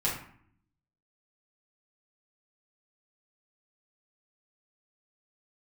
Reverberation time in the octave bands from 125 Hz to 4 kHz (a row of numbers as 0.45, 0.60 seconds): 1.0, 0.90, 0.55, 0.60, 0.55, 0.40 seconds